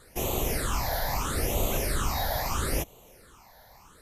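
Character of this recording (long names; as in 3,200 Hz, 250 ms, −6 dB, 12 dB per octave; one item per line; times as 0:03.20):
phaser sweep stages 8, 0.76 Hz, lowest notch 350–1,600 Hz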